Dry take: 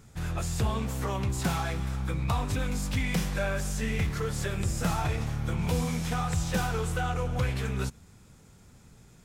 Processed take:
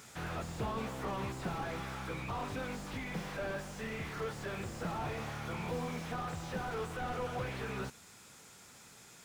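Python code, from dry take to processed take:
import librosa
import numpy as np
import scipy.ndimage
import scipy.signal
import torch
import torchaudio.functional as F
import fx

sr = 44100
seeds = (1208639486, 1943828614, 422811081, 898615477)

y = fx.highpass(x, sr, hz=1100.0, slope=6)
y = fx.rider(y, sr, range_db=10, speed_s=2.0)
y = fx.slew_limit(y, sr, full_power_hz=7.2)
y = F.gain(torch.from_numpy(y), 5.5).numpy()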